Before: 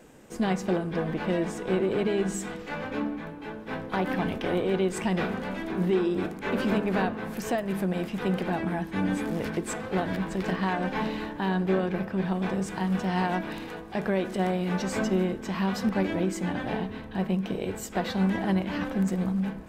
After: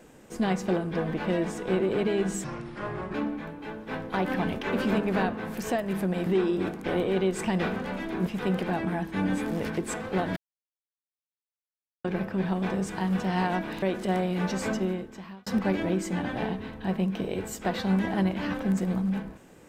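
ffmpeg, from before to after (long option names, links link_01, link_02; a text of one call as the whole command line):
ffmpeg -i in.wav -filter_complex "[0:a]asplit=11[link_01][link_02][link_03][link_04][link_05][link_06][link_07][link_08][link_09][link_10][link_11];[link_01]atrim=end=2.444[link_12];[link_02]atrim=start=2.44:end=2.94,asetpts=PTS-STARTPTS,asetrate=31311,aresample=44100,atrim=end_sample=31056,asetpts=PTS-STARTPTS[link_13];[link_03]atrim=start=2.936:end=4.432[link_14];[link_04]atrim=start=6.428:end=8.062[link_15];[link_05]atrim=start=5.838:end=6.432[link_16];[link_06]atrim=start=4.428:end=5.842[link_17];[link_07]atrim=start=8.058:end=10.16,asetpts=PTS-STARTPTS,afade=type=out:start_time=2.098:duration=0.004:curve=hsin[link_18];[link_08]atrim=start=10.16:end=11.84,asetpts=PTS-STARTPTS,volume=0[link_19];[link_09]atrim=start=11.84:end=13.622,asetpts=PTS-STARTPTS,afade=type=in:duration=0.004:curve=hsin[link_20];[link_10]atrim=start=14.128:end=15.77,asetpts=PTS-STARTPTS,afade=type=out:start_time=0.752:duration=0.89[link_21];[link_11]atrim=start=15.77,asetpts=PTS-STARTPTS,afade=type=in:duration=0.004:curve=hsin[link_22];[link_12][link_13]acrossfade=duration=0.004:curve1=hsin:curve2=hsin[link_23];[link_23][link_14]acrossfade=duration=0.004:curve1=hsin:curve2=hsin[link_24];[link_24][link_15]acrossfade=duration=0.004:curve1=hsin:curve2=hsin[link_25];[link_25][link_16]acrossfade=duration=0.004:curve1=hsin:curve2=hsin[link_26];[link_26][link_17]acrossfade=duration=0.004:curve1=hsin:curve2=hsin[link_27];[link_18][link_19][link_20]concat=n=3:v=0:a=1[link_28];[link_27][link_28]acrossfade=duration=0.004:curve1=hsin:curve2=hsin[link_29];[link_21][link_22]concat=n=2:v=0:a=1[link_30];[link_29][link_30]acrossfade=duration=0.004:curve1=hsin:curve2=hsin" out.wav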